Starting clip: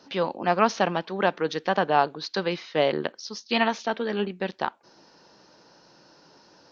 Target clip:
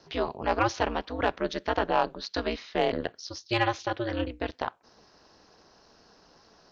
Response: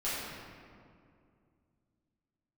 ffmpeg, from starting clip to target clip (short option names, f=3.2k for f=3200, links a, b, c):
-af "aeval=exprs='val(0)*sin(2*PI*120*n/s)':c=same,asoftclip=type=tanh:threshold=-9.5dB"